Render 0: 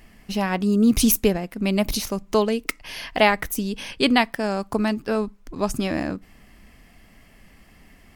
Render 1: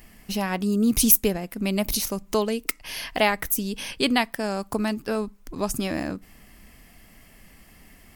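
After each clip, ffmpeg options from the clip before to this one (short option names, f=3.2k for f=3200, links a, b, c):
-filter_complex "[0:a]highshelf=f=7.9k:g=12,asplit=2[a][b];[b]acompressor=threshold=-27dB:ratio=6,volume=-2.5dB[c];[a][c]amix=inputs=2:normalize=0,volume=-5.5dB"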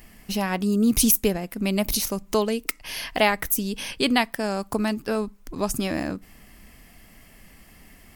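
-af "alimiter=level_in=6.5dB:limit=-1dB:release=50:level=0:latency=1,volume=-5.5dB"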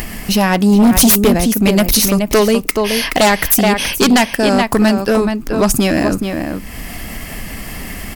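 -filter_complex "[0:a]asplit=2[a][b];[b]adelay=425.7,volume=-7dB,highshelf=f=4k:g=-9.58[c];[a][c]amix=inputs=2:normalize=0,acompressor=mode=upward:threshold=-30dB:ratio=2.5,aeval=exprs='0.531*sin(PI/2*3.16*val(0)/0.531)':c=same"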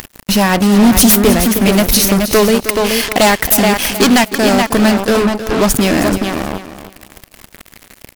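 -af "acrusher=bits=2:mix=0:aa=0.5,aecho=1:1:314|628|942:0.251|0.0553|0.0122,volume=1dB"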